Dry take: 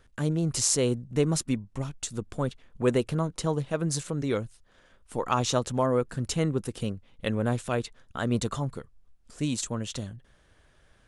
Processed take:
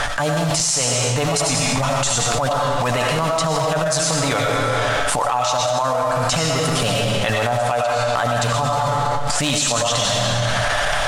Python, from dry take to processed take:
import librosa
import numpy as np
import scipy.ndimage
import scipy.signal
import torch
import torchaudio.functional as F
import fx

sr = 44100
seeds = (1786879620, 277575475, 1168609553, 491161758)

p1 = fx.block_float(x, sr, bits=5)
p2 = scipy.signal.sosfilt(scipy.signal.butter(2, 8800.0, 'lowpass', fs=sr, output='sos'), p1)
p3 = fx.hum_notches(p2, sr, base_hz=50, count=3)
p4 = p3 + 0.49 * np.pad(p3, (int(6.9 * sr / 1000.0), 0))[:len(p3)]
p5 = fx.level_steps(p4, sr, step_db=15)
p6 = p4 + (p5 * 10.0 ** (-1.5 / 20.0))
p7 = fx.low_shelf_res(p6, sr, hz=510.0, db=-10.5, q=3.0)
p8 = fx.comb_fb(p7, sr, f0_hz=120.0, decay_s=0.9, harmonics='all', damping=0.0, mix_pct=40)
p9 = fx.rev_freeverb(p8, sr, rt60_s=1.1, hf_ratio=0.95, predelay_ms=55, drr_db=2.0)
p10 = fx.transient(p9, sr, attack_db=-11, sustain_db=4)
p11 = fx.env_flatten(p10, sr, amount_pct=100)
y = p11 * 10.0 ** (2.5 / 20.0)